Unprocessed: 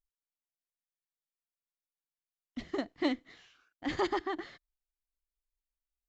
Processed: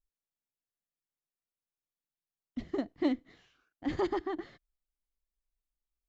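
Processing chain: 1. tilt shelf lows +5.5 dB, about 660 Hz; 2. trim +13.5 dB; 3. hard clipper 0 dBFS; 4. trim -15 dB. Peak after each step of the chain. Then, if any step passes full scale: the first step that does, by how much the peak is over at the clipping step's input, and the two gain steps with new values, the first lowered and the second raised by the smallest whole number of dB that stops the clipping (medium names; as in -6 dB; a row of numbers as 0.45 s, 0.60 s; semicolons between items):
-17.5 dBFS, -4.0 dBFS, -4.0 dBFS, -19.0 dBFS; nothing clips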